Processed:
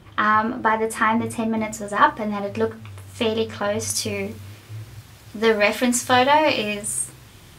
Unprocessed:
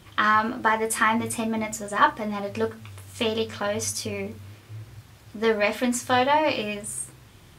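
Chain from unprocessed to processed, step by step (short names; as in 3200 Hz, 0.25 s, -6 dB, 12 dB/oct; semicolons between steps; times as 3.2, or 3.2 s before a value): high shelf 2500 Hz -10 dB, from 1.57 s -5 dB, from 3.9 s +3.5 dB; gain +4 dB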